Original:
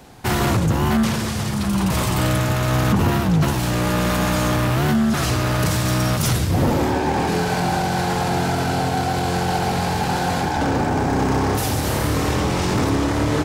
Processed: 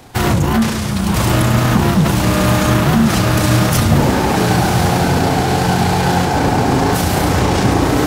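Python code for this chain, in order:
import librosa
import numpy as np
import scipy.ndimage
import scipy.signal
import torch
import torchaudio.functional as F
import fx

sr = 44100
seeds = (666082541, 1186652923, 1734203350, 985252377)

y = fx.stretch_grains(x, sr, factor=0.6, grain_ms=69.0)
y = fx.echo_diffused(y, sr, ms=1080, feedback_pct=48, wet_db=-4.5)
y = y * librosa.db_to_amplitude(5.5)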